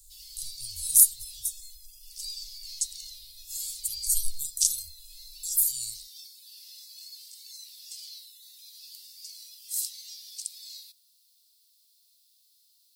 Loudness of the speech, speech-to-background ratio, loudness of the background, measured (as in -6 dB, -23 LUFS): -25.0 LUFS, 11.5 dB, -36.5 LUFS